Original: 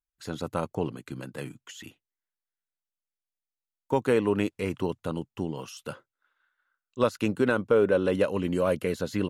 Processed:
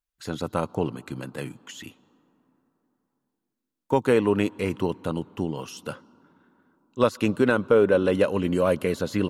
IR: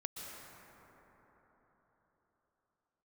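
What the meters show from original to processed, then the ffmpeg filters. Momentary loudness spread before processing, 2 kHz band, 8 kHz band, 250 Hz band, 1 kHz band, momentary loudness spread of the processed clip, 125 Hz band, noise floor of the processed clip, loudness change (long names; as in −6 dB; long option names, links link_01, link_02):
17 LU, +3.5 dB, +3.0 dB, +3.5 dB, +3.5 dB, 17 LU, +3.0 dB, −83 dBFS, +3.0 dB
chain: -filter_complex "[0:a]asplit=2[link_01][link_02];[link_02]equalizer=frequency=125:width_type=o:width=1:gain=-9,equalizer=frequency=250:width_type=o:width=1:gain=9,equalizer=frequency=500:width_type=o:width=1:gain=-8,equalizer=frequency=1000:width_type=o:width=1:gain=9,equalizer=frequency=2000:width_type=o:width=1:gain=-9,equalizer=frequency=4000:width_type=o:width=1:gain=8,equalizer=frequency=8000:width_type=o:width=1:gain=6[link_03];[1:a]atrim=start_sample=2205,asetrate=48510,aresample=44100,lowpass=4500[link_04];[link_03][link_04]afir=irnorm=-1:irlink=0,volume=-21dB[link_05];[link_01][link_05]amix=inputs=2:normalize=0,volume=3dB"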